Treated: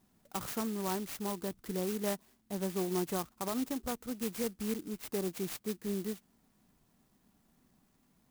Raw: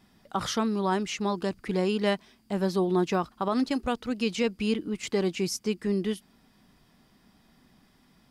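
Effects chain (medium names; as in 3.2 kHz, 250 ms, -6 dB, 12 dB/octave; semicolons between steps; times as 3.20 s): sampling jitter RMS 0.11 ms; trim -8.5 dB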